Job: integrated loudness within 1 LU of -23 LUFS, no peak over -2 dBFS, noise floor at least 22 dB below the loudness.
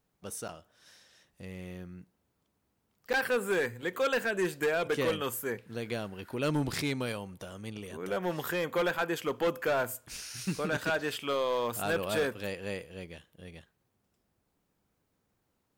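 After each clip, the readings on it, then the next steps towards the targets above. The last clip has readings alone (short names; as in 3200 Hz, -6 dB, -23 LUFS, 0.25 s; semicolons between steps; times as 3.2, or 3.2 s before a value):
clipped 1.6%; flat tops at -23.5 dBFS; dropouts 2; longest dropout 8.4 ms; loudness -32.5 LUFS; peak -23.5 dBFS; loudness target -23.0 LUFS
-> clip repair -23.5 dBFS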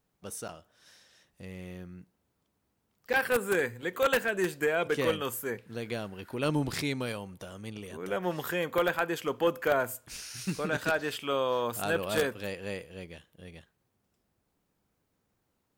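clipped 0.0%; dropouts 2; longest dropout 8.4 ms
-> interpolate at 0.48/3.13, 8.4 ms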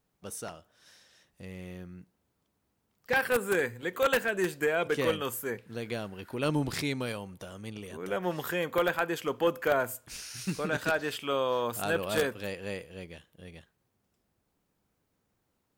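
dropouts 0; loudness -31.0 LUFS; peak -14.5 dBFS; loudness target -23.0 LUFS
-> gain +8 dB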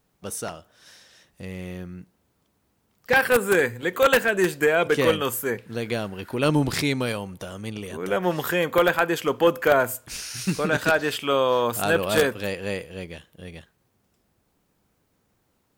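loudness -23.0 LUFS; peak -6.5 dBFS; noise floor -70 dBFS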